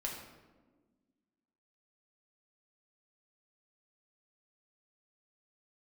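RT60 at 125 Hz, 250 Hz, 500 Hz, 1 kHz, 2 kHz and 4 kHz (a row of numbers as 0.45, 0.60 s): 1.7, 2.2, 1.6, 1.2, 0.95, 0.75 s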